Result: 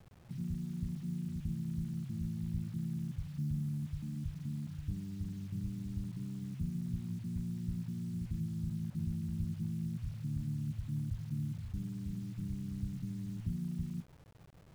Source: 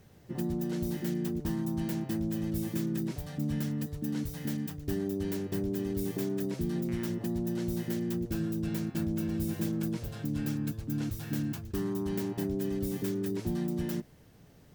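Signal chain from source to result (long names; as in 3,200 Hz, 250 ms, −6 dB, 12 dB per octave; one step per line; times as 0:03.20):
0:12.38–0:13.45: lower of the sound and its delayed copy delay 0.31 ms
inverse Chebyshev low-pass filter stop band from 780 Hz, stop band 70 dB
bit reduction 10 bits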